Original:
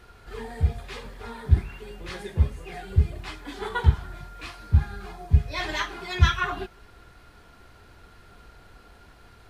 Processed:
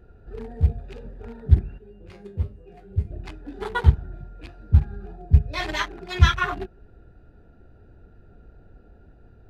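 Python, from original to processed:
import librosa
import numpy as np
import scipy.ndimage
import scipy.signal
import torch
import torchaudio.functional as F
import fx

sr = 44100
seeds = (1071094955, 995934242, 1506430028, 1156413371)

y = fx.wiener(x, sr, points=41)
y = fx.comb_fb(y, sr, f0_hz=100.0, decay_s=0.25, harmonics='all', damping=0.0, mix_pct=80, at=(1.78, 3.11))
y = y * librosa.db_to_amplitude(3.0)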